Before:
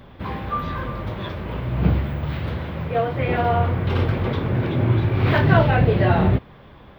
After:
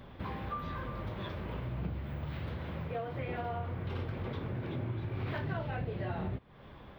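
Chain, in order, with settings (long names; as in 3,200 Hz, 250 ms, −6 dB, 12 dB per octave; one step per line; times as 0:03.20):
downward compressor 4 to 1, threshold −30 dBFS, peak gain reduction 16.5 dB
level −6 dB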